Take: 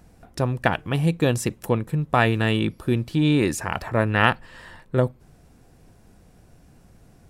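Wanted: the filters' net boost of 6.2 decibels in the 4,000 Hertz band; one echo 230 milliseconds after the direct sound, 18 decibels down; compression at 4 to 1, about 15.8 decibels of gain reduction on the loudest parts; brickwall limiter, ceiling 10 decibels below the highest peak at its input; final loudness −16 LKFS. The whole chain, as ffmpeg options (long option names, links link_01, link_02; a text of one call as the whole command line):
ffmpeg -i in.wav -af "equalizer=frequency=4000:width_type=o:gain=8.5,acompressor=threshold=-32dB:ratio=4,alimiter=level_in=2.5dB:limit=-24dB:level=0:latency=1,volume=-2.5dB,aecho=1:1:230:0.126,volume=22.5dB" out.wav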